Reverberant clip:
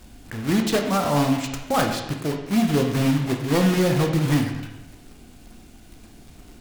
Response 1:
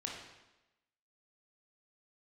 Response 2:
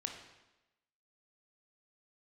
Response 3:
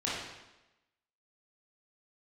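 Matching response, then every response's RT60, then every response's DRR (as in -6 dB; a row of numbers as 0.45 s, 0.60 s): 2; 1.0 s, 1.0 s, 1.0 s; -1.5 dB, 3.0 dB, -8.0 dB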